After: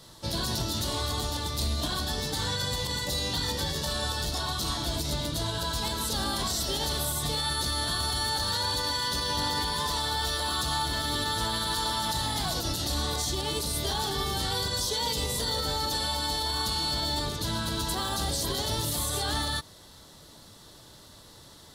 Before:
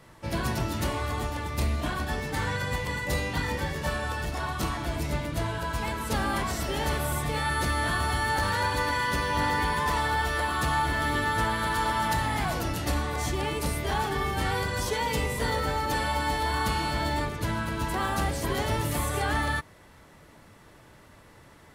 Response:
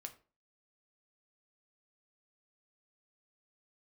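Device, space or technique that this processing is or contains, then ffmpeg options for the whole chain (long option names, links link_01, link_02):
over-bright horn tweeter: -af "highshelf=frequency=3000:width_type=q:width=3:gain=8.5,alimiter=limit=-20dB:level=0:latency=1:release=58"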